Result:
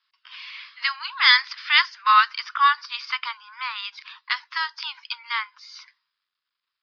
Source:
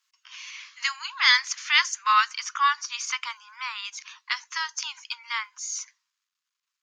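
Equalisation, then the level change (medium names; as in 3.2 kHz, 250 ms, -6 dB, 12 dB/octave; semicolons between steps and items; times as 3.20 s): rippled Chebyshev low-pass 5.1 kHz, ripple 3 dB; +4.5 dB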